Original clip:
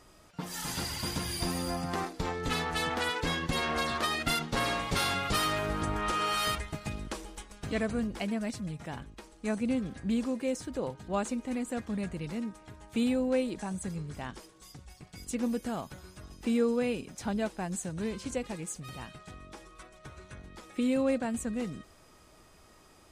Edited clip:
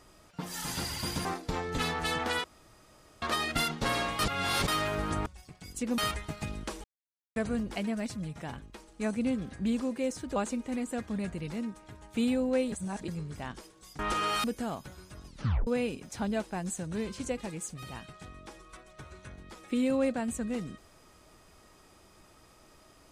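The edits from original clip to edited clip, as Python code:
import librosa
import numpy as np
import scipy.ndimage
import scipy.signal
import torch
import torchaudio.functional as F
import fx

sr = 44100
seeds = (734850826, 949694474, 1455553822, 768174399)

y = fx.edit(x, sr, fx.cut(start_s=1.25, length_s=0.71),
    fx.room_tone_fill(start_s=3.15, length_s=0.78),
    fx.reverse_span(start_s=4.9, length_s=0.49),
    fx.swap(start_s=5.97, length_s=0.45, other_s=14.78, other_length_s=0.72),
    fx.silence(start_s=7.28, length_s=0.52),
    fx.cut(start_s=10.8, length_s=0.35),
    fx.reverse_span(start_s=13.51, length_s=0.36),
    fx.tape_stop(start_s=16.33, length_s=0.4), tone=tone)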